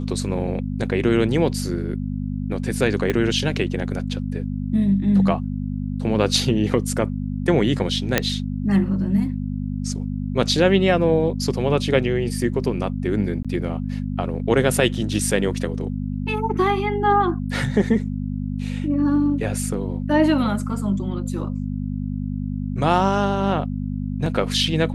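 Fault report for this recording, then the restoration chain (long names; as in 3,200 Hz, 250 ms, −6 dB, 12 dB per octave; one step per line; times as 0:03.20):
mains hum 50 Hz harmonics 5 −26 dBFS
0:03.10: click −9 dBFS
0:08.18: click −1 dBFS
0:13.43–0:13.45: drop-out 16 ms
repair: click removal
hum removal 50 Hz, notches 5
repair the gap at 0:13.43, 16 ms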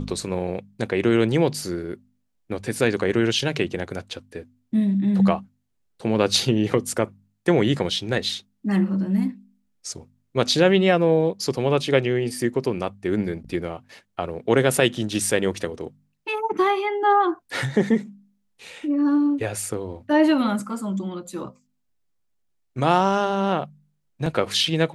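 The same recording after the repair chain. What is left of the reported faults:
0:03.10: click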